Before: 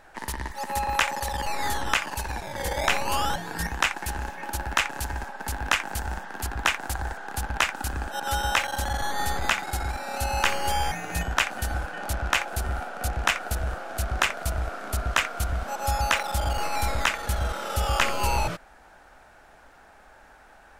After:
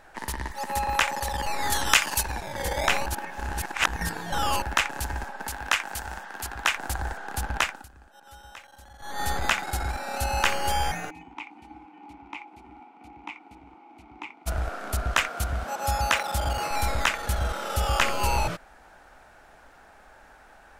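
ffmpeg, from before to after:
ffmpeg -i in.wav -filter_complex "[0:a]asettb=1/sr,asplit=3[link_01][link_02][link_03];[link_01]atrim=end=1.724[link_04];[link_02]atrim=start=1.72:end=2.23,asetpts=PTS-STARTPTS,afade=type=in:duration=0.004:curve=qsin,afade=type=out:start_time=0.506:duration=0.004:curve=qsin,highshelf=frequency=2700:gain=11.5[link_05];[link_03]atrim=start=2.226[link_06];[link_04][link_05]acrossfade=duration=0.004:curve1=hsin:curve2=qsin[link_07];[link_07][link_06]acrossfade=duration=0.004:curve1=qsin:curve2=hsin,asettb=1/sr,asplit=3[link_08][link_09][link_10];[link_08]atrim=end=5.474[link_11];[link_09]atrim=start=5.47:end=6.76,asetpts=PTS-STARTPTS,afade=type=in:duration=0.004:curve=qsin,afade=type=out:start_time=1.286:duration=0.004:curve=qsin,lowshelf=frequency=450:gain=-9[link_12];[link_10]atrim=start=6.756[link_13];[link_11][link_12]acrossfade=duration=0.004:curve1=hsin:curve2=qsin[link_14];[link_14][link_13]acrossfade=duration=0.004:curve1=qsin:curve2=hsin,asplit=3[link_15][link_16][link_17];[link_15]afade=type=out:start_time=11.09:duration=0.02[link_18];[link_16]asplit=3[link_19][link_20][link_21];[link_19]bandpass=frequency=300:width_type=q:width=8,volume=0dB[link_22];[link_20]bandpass=frequency=870:width_type=q:width=8,volume=-6dB[link_23];[link_21]bandpass=frequency=2240:width_type=q:width=8,volume=-9dB[link_24];[link_22][link_23][link_24]amix=inputs=3:normalize=0,afade=type=in:start_time=11.09:duration=0.02,afade=type=out:start_time=14.46:duration=0.02[link_25];[link_17]afade=type=in:start_time=14.46:duration=0.02[link_26];[link_18][link_25][link_26]amix=inputs=3:normalize=0,asettb=1/sr,asplit=3[link_27][link_28][link_29];[link_27]atrim=end=15.284[link_30];[link_28]atrim=start=15.28:end=16.71,asetpts=PTS-STARTPTS,afade=type=in:duration=0.004:curve=qsin,afade=type=out:start_time=1.426:duration=0.004:curve=qsin,highpass=46[link_31];[link_29]atrim=start=16.706[link_32];[link_30][link_31]acrossfade=duration=0.004:curve1=hsin:curve2=qsin[link_33];[link_33][link_32]acrossfade=duration=0.004:curve1=qsin:curve2=hsin,asplit=5[link_34][link_35][link_36][link_37][link_38];[link_34]atrim=end=3.062[link_39];[link_35]atrim=start=3.058:end=4.622,asetpts=PTS-STARTPTS,areverse[link_40];[link_36]atrim=start=4.618:end=7.87,asetpts=PTS-STARTPTS,afade=type=out:start_time=2.952:duration=0.3:silence=0.0841395[link_41];[link_37]atrim=start=7.87:end=8.99,asetpts=PTS-STARTPTS,volume=-21.5dB[link_42];[link_38]atrim=start=8.99,asetpts=PTS-STARTPTS,afade=type=in:duration=0.3:silence=0.0841395[link_43];[link_39][link_40]acrossfade=duration=0.004:curve1=hsin:curve2=hsin[link_44];[link_41][link_42][link_43]concat=n=3:v=0:a=1[link_45];[link_44][link_45]acrossfade=duration=0.004:curve1=hsin:curve2=hsin" out.wav

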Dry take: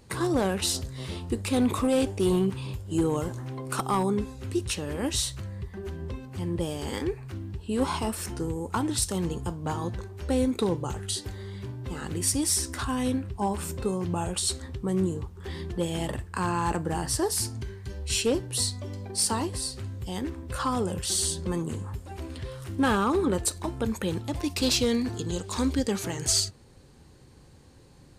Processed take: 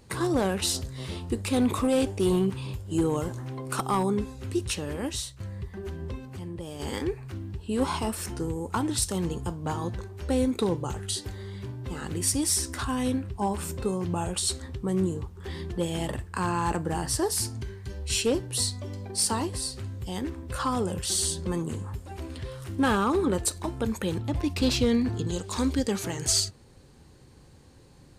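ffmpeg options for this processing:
ffmpeg -i in.wav -filter_complex "[0:a]asettb=1/sr,asplit=3[link_01][link_02][link_03];[link_01]atrim=end=6.214[link_04];[link_02]atrim=start=6.21:end=6.8,asetpts=PTS-STARTPTS,afade=type=in:duration=0.004:curve=qsin,afade=type=out:start_time=0.586:duration=0.004:curve=qsin,acompressor=threshold=-35dB:ratio=3:attack=3.2:release=140:knee=1:detection=peak[link_05];[link_03]atrim=start=6.796[link_06];[link_04][link_05]acrossfade=duration=0.004:curve1=hsin:curve2=qsin[link_07];[link_07][link_06]acrossfade=duration=0.004:curve1=qsin:curve2=hsin,asettb=1/sr,asplit=3[link_08][link_09][link_10];[link_08]atrim=end=24.184[link_11];[link_09]atrim=start=24.18:end=25.27,asetpts=PTS-STARTPTS,afade=type=in:duration=0.004:curve=qsin,afade=type=out:start_time=1.086:duration=0.004:curve=qsin,bass=frequency=250:gain=5,treble=frequency=4000:gain=-7[link_12];[link_10]atrim=start=25.266[link_13];[link_11][link_12]acrossfade=duration=0.004:curve1=hsin:curve2=qsin[link_14];[link_14][link_13]acrossfade=duration=0.004:curve1=qsin:curve2=hsin,asplit=2[link_15][link_16];[link_15]atrim=end=5.4,asetpts=PTS-STARTPTS,afade=type=out:start_time=4.88:duration=0.52:silence=0.223872[link_17];[link_16]atrim=start=5.4,asetpts=PTS-STARTPTS,afade=type=in:duration=0.004:curve=hsin:silence=0.223872[link_18];[link_17][link_18]concat=n=2:v=0:a=1" out.wav

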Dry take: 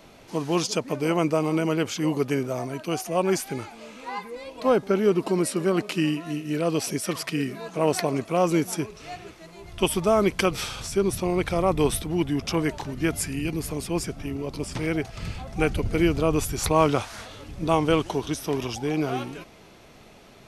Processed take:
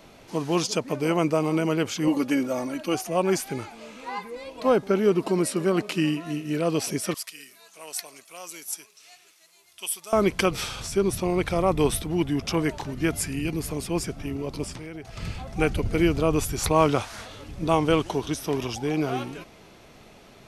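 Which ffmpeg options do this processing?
ffmpeg -i in.wav -filter_complex "[0:a]asettb=1/sr,asplit=3[link_01][link_02][link_03];[link_01]atrim=end=2.074[link_04];[link_02]atrim=start=2.07:end=2.95,asetpts=PTS-STARTPTS,afade=type=in:duration=0.004:curve=qsin,afade=type=out:start_time=0.876:duration=0.004:curve=qsin,aecho=1:1:3.6:0.77,atrim=end_sample=38808[link_05];[link_03]atrim=start=2.946[link_06];[link_04][link_05]acrossfade=duration=0.004:curve1=hsin:curve2=qsin[link_07];[link_07][link_06]acrossfade=duration=0.004:curve1=qsin:curve2=hsin,asettb=1/sr,asplit=3[link_08][link_09][link_10];[link_08]atrim=end=7.144[link_11];[link_09]atrim=start=7.14:end=10.13,asetpts=PTS-STARTPTS,afade=type=in:duration=0.004:curve=qsin,afade=type=out:start_time=2.986:duration=0.004:curve=qsin,aderivative[link_12];[link_10]atrim=start=10.126[link_13];[link_11][link_12]acrossfade=duration=0.004:curve1=hsin:curve2=qsin[link_14];[link_14][link_13]acrossfade=duration=0.004:curve1=qsin:curve2=hsin,asettb=1/sr,asplit=3[link_15][link_16][link_17];[link_15]atrim=end=14.714[link_18];[link_16]atrim=start=14.71:end=15.17,asetpts=PTS-STARTPTS,afade=type=in:duration=0.004:curve=qsin,afade=type=out:start_time=0.456:duration=0.004:curve=qsin,acompressor=threshold=-35dB:ratio=5:attack=3.2:release=140:knee=1:detection=peak[link_19];[link_17]atrim=start=15.166[link_20];[link_18][link_19]acrossfade=duration=0.004:curve1=hsin:curve2=qsin[link_21];[link_21][link_20]acrossfade=duration=0.004:curve1=qsin:curve2=hsin" out.wav

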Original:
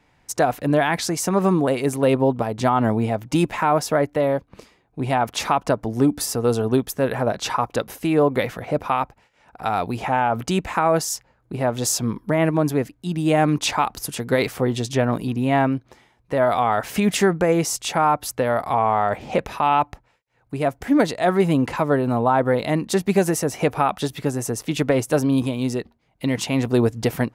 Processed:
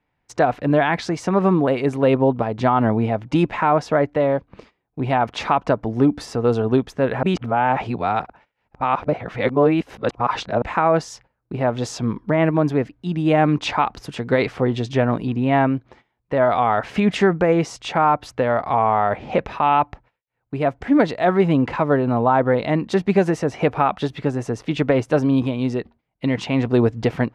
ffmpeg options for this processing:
ffmpeg -i in.wav -filter_complex "[0:a]asplit=3[link_01][link_02][link_03];[link_01]atrim=end=7.232[link_04];[link_02]atrim=start=7.228:end=10.622,asetpts=PTS-STARTPTS,areverse[link_05];[link_03]atrim=start=10.618[link_06];[link_04][link_05]acrossfade=duration=0.004:curve1=hsin:curve2=hsin[link_07];[link_07][link_06]acrossfade=duration=0.004:curve1=hsin:curve2=hsin,lowpass=3300,agate=range=-14dB:threshold=-49dB:ratio=16:detection=peak,volume=1.5dB" out.wav

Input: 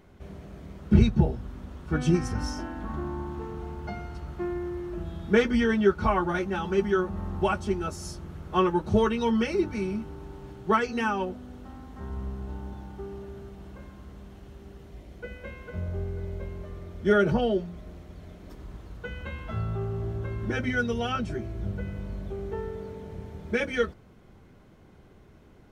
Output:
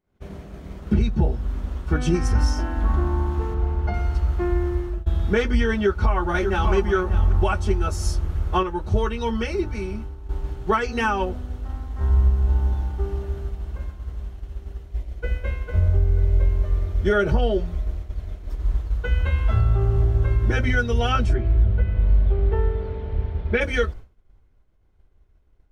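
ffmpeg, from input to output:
ffmpeg -i in.wav -filter_complex "[0:a]asettb=1/sr,asplit=3[link_01][link_02][link_03];[link_01]atrim=end=3.544[link_04];[link_02]atrim=start=3.54:end=3.94,asetpts=PTS-STARTPTS,afade=type=in:duration=0.004:curve=qsin,afade=type=out:start_time=0.396:duration=0.004:curve=qsin,lowpass=frequency=2600:poles=1[link_05];[link_03]atrim=start=3.936[link_06];[link_04][link_05]acrossfade=duration=0.004:curve1=hsin:curve2=qsin[link_07];[link_07][link_06]acrossfade=duration=0.004:curve1=qsin:curve2=hsin,asplit=2[link_08][link_09];[link_09]afade=type=in:start_time=5.82:duration=0.01,afade=type=out:start_time=6.73:duration=0.01,aecho=0:1:590|1180:0.266073|0.0399109[link_10];[link_08][link_10]amix=inputs=2:normalize=0,asplit=3[link_11][link_12][link_13];[link_11]afade=type=out:start_time=21.33:duration=0.02[link_14];[link_12]lowpass=frequency=3900:width=0.5412,lowpass=frequency=3900:width=1.3066,afade=type=in:start_time=21.33:duration=0.02,afade=type=out:start_time=23.6:duration=0.02[link_15];[link_13]afade=type=in:start_time=23.6:duration=0.02[link_16];[link_14][link_15][link_16]amix=inputs=3:normalize=0,asplit=4[link_17][link_18][link_19][link_20];[link_17]atrim=end=5.06,asetpts=PTS-STARTPTS,afade=type=out:start_time=4.65:duration=0.41:curve=qsin:silence=0.0944061[link_21];[link_18]atrim=start=5.06:end=8.632,asetpts=PTS-STARTPTS,afade=type=in:duration=0.004:curve=hsin:silence=0.0944061[link_22];[link_19]atrim=start=8.628:end=10.292,asetpts=PTS-STARTPTS,volume=-5.5dB[link_23];[link_20]atrim=start=10.288[link_24];[link_21][link_22]concat=n=2:v=0:a=1[link_25];[link_25][link_23]acrossfade=duration=0.004:curve1=hsin:curve2=hsin[link_26];[link_26][link_24]acrossfade=duration=0.004:curve1=hsin:curve2=hsin,agate=range=-33dB:threshold=-39dB:ratio=3:detection=peak,asubboost=boost=11.5:cutoff=51,alimiter=limit=-17.5dB:level=0:latency=1:release=339,volume=7.5dB" out.wav

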